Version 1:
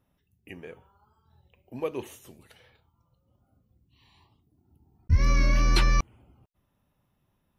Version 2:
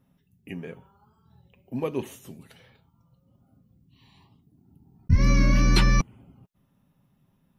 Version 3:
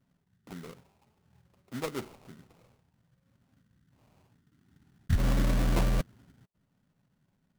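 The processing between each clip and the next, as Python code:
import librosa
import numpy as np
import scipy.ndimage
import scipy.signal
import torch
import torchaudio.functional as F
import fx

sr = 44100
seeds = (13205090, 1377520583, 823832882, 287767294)

y1 = fx.peak_eq(x, sr, hz=190.0, db=12.0, octaves=0.83)
y1 = y1 + 0.31 * np.pad(y1, (int(7.4 * sr / 1000.0), 0))[:len(y1)]
y1 = F.gain(torch.from_numpy(y1), 1.5).numpy()
y2 = fx.sample_hold(y1, sr, seeds[0], rate_hz=1700.0, jitter_pct=20)
y2 = F.gain(torch.from_numpy(y2), -7.0).numpy()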